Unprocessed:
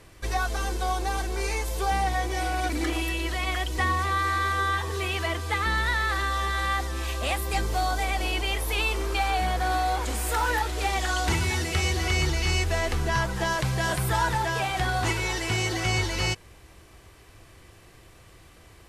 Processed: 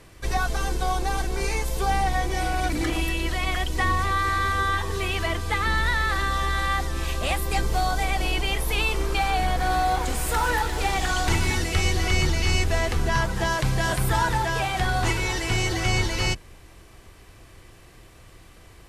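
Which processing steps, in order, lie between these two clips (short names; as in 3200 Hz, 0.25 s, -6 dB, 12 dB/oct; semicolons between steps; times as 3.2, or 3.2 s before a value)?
octaver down 2 oct, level -1 dB; 9.43–11.59 lo-fi delay 0.154 s, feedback 55%, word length 8-bit, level -12.5 dB; gain +1.5 dB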